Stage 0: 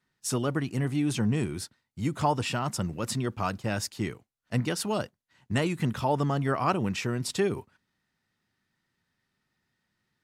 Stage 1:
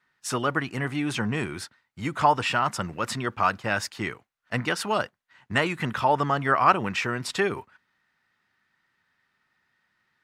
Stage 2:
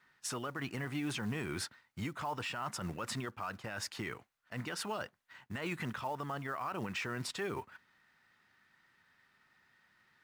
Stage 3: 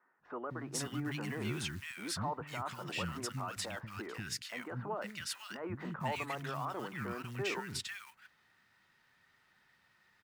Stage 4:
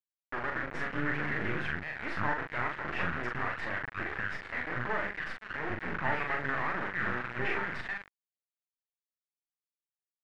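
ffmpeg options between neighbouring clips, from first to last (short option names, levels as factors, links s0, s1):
-af "equalizer=f=1500:w=0.44:g=14.5,volume=0.631"
-af "areverse,acompressor=threshold=0.0316:ratio=16,areverse,alimiter=level_in=2.24:limit=0.0631:level=0:latency=1:release=142,volume=0.447,acrusher=bits=6:mode=log:mix=0:aa=0.000001,volume=1.33"
-filter_complex "[0:a]acrossover=split=250|1500[s0][s1][s2];[s0]adelay=190[s3];[s2]adelay=500[s4];[s3][s1][s4]amix=inputs=3:normalize=0,volume=1.19"
-filter_complex "[0:a]acrusher=bits=4:dc=4:mix=0:aa=0.000001,lowpass=f=1800:t=q:w=3.5,asplit=2[s0][s1];[s1]adelay=41,volume=0.668[s2];[s0][s2]amix=inputs=2:normalize=0,volume=1.68"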